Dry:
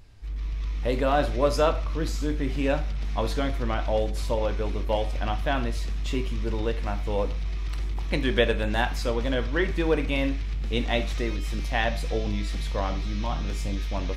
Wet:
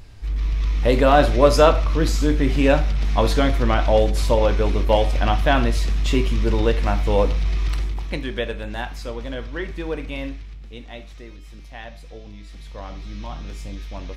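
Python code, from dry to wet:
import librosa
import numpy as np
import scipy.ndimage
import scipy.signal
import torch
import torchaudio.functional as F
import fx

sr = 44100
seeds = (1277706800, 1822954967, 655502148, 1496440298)

y = fx.gain(x, sr, db=fx.line((7.68, 8.5), (8.31, -4.0), (10.28, -4.0), (10.78, -12.0), (12.37, -12.0), (13.14, -4.0)))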